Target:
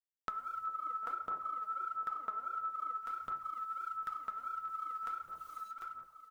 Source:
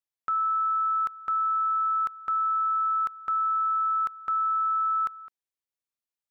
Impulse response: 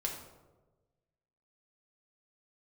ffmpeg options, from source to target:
-filter_complex "[1:a]atrim=start_sample=2205[link_01];[0:a][link_01]afir=irnorm=-1:irlink=0,acrusher=bits=10:mix=0:aa=0.000001,aecho=1:1:749|1498|2247:0.141|0.0523|0.0193,aphaser=in_gain=1:out_gain=1:delay=4.8:decay=0.61:speed=1.5:type=sinusoidal,asettb=1/sr,asplit=3[link_02][link_03][link_04];[link_02]atrim=end=0.674[link_05];[link_03]atrim=start=0.67:end=3.01,asetpts=PTS-STARTPTS,afade=type=in:duration=0.004:curve=qsin,afade=type=out:start_time=2.336:duration=0.004:curve=qsin,equalizer=frequency=520:width_type=o:width=2.7:gain=12.5[link_06];[link_04]atrim=start=3.006[link_07];[link_05][link_06]acrossfade=duration=0.004:curve1=hsin:curve2=qsin[link_08];[link_08][link_07]acrossfade=duration=0.004:curve1=qsin:curve2=hsin,flanger=delay=7.4:depth=4:regen=-66:speed=0.33:shape=triangular,acompressor=threshold=-51dB:ratio=4,volume=10dB"

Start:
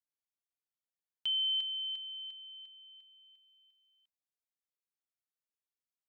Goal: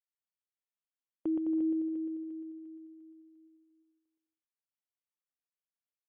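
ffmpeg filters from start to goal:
ffmpeg -i in.wav -filter_complex "[0:a]afftdn=noise_reduction=16:noise_floor=-49,asplit=2[link_01][link_02];[link_02]aecho=0:1:120|210|277.5|328.1|366.1:0.631|0.398|0.251|0.158|0.1[link_03];[link_01][link_03]amix=inputs=2:normalize=0,lowpass=frequency=2900:width_type=q:width=0.5098,lowpass=frequency=2900:width_type=q:width=0.6013,lowpass=frequency=2900:width_type=q:width=0.9,lowpass=frequency=2900:width_type=q:width=2.563,afreqshift=-3400,volume=7.5dB" out.wav

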